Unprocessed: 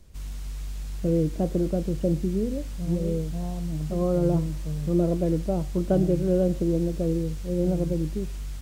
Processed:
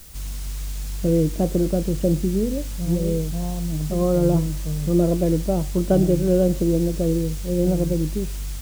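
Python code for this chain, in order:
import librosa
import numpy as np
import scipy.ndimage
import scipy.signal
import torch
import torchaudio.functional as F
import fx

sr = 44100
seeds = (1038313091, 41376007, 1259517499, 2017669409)

p1 = fx.quant_dither(x, sr, seeds[0], bits=8, dither='triangular')
p2 = x + F.gain(torch.from_numpy(p1), -4.0).numpy()
y = fx.high_shelf(p2, sr, hz=4200.0, db=7.5)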